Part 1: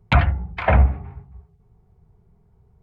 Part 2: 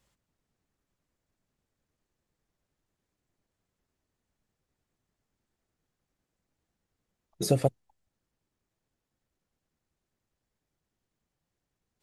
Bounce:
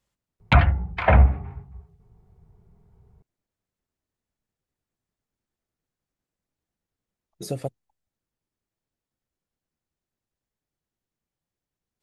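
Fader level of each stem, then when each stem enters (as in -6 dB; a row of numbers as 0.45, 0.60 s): 0.0, -5.5 dB; 0.40, 0.00 s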